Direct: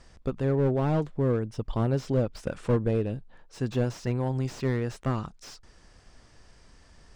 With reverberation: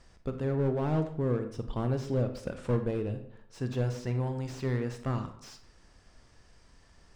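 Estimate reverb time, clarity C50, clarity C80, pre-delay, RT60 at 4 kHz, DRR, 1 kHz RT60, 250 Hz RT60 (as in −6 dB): 0.70 s, 9.5 dB, 12.5 dB, 31 ms, 0.45 s, 7.5 dB, 0.70 s, 0.70 s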